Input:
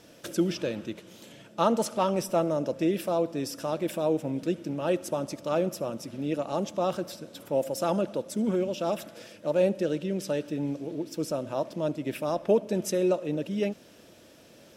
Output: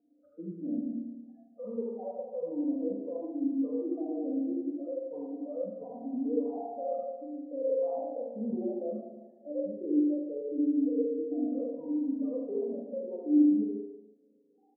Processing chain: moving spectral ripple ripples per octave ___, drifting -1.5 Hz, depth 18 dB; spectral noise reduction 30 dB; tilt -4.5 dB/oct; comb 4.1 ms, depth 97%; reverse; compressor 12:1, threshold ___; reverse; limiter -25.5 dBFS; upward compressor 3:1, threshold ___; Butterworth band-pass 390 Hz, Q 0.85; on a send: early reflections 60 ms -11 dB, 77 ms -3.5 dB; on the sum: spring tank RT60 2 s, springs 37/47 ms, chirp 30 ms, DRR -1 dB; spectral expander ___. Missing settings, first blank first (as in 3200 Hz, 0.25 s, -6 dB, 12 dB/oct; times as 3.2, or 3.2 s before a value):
0.78, -23 dBFS, -44 dBFS, 1.5:1